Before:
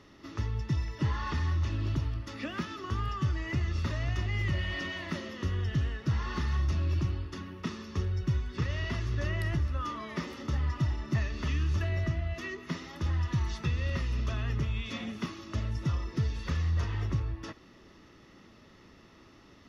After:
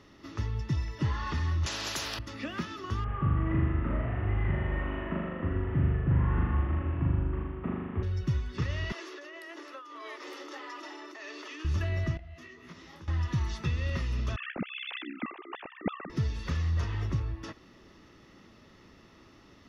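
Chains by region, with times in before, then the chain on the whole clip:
1.66–2.19 notch 2200 Hz, Q 5.4 + spectral compressor 10:1
3.04–8.03 CVSD 16 kbps + LPF 1300 Hz + flutter echo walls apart 6.9 m, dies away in 1.4 s
8.92–11.65 steep high-pass 290 Hz 96 dB/oct + negative-ratio compressor -43 dBFS + core saturation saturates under 760 Hz
12.17–13.08 compressor 3:1, threshold -43 dBFS + detuned doubles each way 56 cents
14.36–16.1 sine-wave speech + low shelf 440 Hz -5.5 dB + AM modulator 64 Hz, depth 65%
whole clip: dry

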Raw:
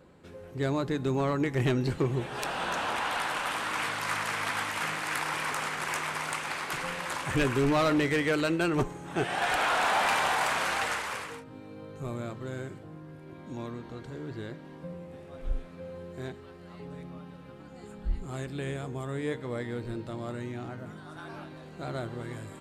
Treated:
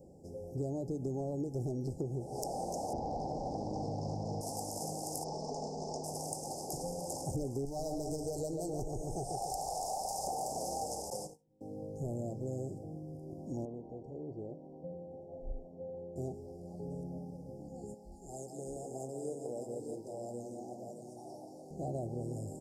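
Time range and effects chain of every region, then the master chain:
2.93–4.41 LPF 4700 Hz 24 dB/oct + low shelf 330 Hz +12 dB
5.24–6.04 LPF 5200 Hz 24 dB/oct + comb 4.6 ms, depth 53%
7.65–10.27 bell 280 Hz -14 dB 2.7 oct + darkening echo 0.139 s, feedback 59%, low-pass 3700 Hz, level -5 dB + fast leveller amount 50%
11.1–11.61 comb 5.6 ms, depth 72% + gate -39 dBFS, range -27 dB
13.65–16.16 polynomial smoothing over 41 samples + low shelf 310 Hz -10 dB
17.94–21.71 HPF 890 Hz 6 dB/oct + tapped delay 0.177/0.615 s -6/-5 dB
whole clip: Chebyshev band-stop 800–5100 Hz, order 5; compressor 10:1, threshold -35 dBFS; gain +1.5 dB

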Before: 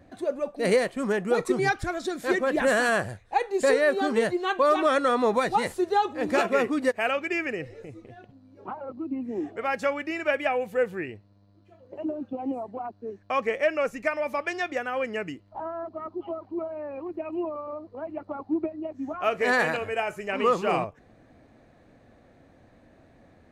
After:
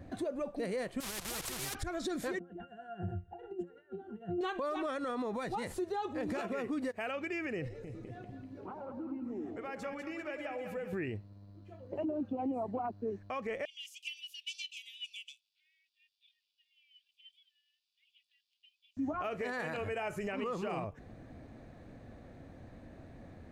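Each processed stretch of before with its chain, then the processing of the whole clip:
1–1.75 delta modulation 64 kbps, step -28 dBFS + level quantiser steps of 16 dB + spectral compressor 4:1
2.39–4.41 bell 4500 Hz -13 dB 0.32 oct + negative-ratio compressor -33 dBFS + octave resonator F, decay 0.2 s
7.68–10.93 compressor 2.5:1, threshold -48 dBFS + split-band echo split 890 Hz, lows 0.103 s, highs 0.196 s, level -6.5 dB
13.65–18.97 ring modulator 570 Hz + steep high-pass 2600 Hz 72 dB/oct
whole clip: low shelf 250 Hz +8 dB; compressor, threshold -29 dBFS; limiter -28.5 dBFS

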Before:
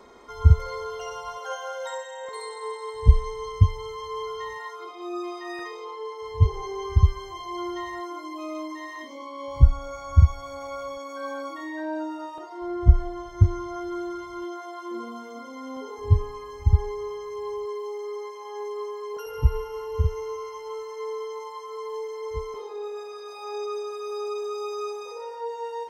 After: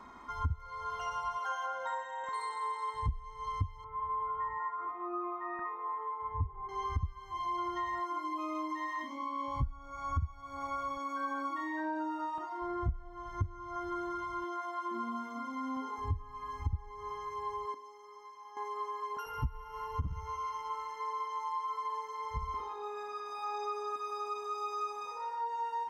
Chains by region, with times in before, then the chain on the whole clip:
1.66–2.24 HPF 69 Hz + tilt -2.5 dB/oct
3.84–6.69 LPF 1700 Hz 24 dB/oct + echo 0.377 s -17.5 dB
17.74–18.57 bell 5700 Hz +10 dB 0.25 oct + resonator 52 Hz, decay 0.37 s, harmonics odd, mix 80%
20.01–23.96 analogue delay 60 ms, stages 2048, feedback 39%, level -7 dB + core saturation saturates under 130 Hz
whole clip: EQ curve 280 Hz 0 dB, 450 Hz -16 dB, 1000 Hz +4 dB, 4100 Hz -8 dB; compressor 6:1, threshold -32 dBFS

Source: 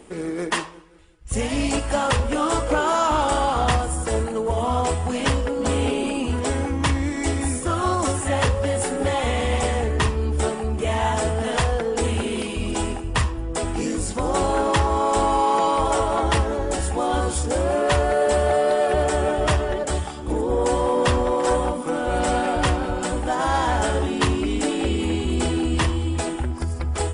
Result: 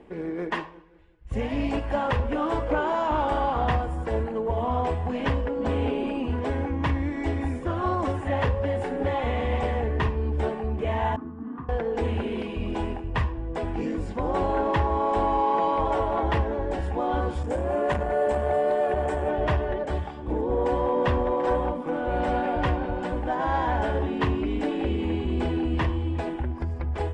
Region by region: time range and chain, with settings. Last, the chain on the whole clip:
11.16–11.69 double band-pass 570 Hz, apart 2.1 oct + tilt shelf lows +9.5 dB, about 720 Hz
17.43–19.3 resonant high shelf 6000 Hz +7.5 dB, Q 1.5 + core saturation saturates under 330 Hz
whole clip: LPF 2200 Hz 12 dB/oct; notch 1300 Hz, Q 7.6; gain -3.5 dB

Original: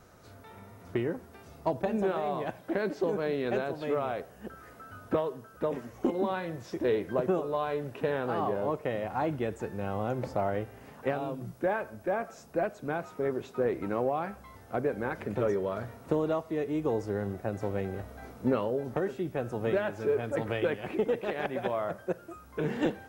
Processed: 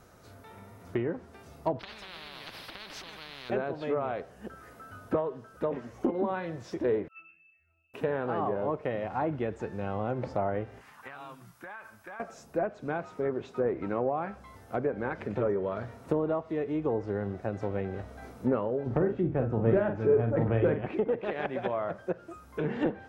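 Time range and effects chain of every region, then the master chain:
1.79–3.5 resonant high shelf 5400 Hz -10 dB, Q 3 + compressor 5:1, threshold -35 dBFS + spectral compressor 10:1
7.08–7.94 inverted band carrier 2900 Hz + octave resonator E, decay 0.72 s + three-band expander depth 100%
10.81–12.2 resonant low shelf 770 Hz -12.5 dB, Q 1.5 + compressor 10:1, threshold -39 dBFS
18.86–20.86 low shelf 230 Hz +11 dB + doubler 44 ms -7 dB
whole clip: bell 13000 Hz +3 dB 0.57 oct; treble ducked by the level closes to 1600 Hz, closed at -24.5 dBFS

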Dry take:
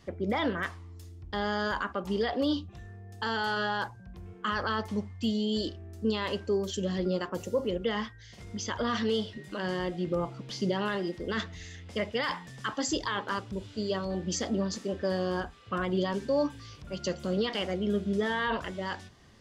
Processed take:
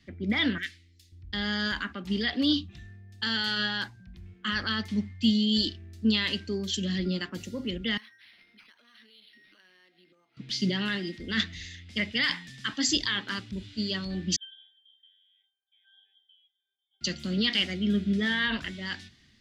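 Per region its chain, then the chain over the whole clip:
0.58–1.12 Butterworth band-stop 900 Hz, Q 0.56 + bell 140 Hz -12 dB 2.8 oct
7.97–10.37 HPF 550 Hz + compressor 4:1, threshold -49 dBFS + decimation joined by straight lines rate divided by 6×
14.36–17.01 inverted band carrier 3600 Hz + steep high-pass 430 Hz 72 dB/oct + octave resonator G, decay 0.62 s
whole clip: graphic EQ 250/500/1000/2000/4000 Hz +7/-11/-10/+8/+9 dB; three-band expander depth 40%

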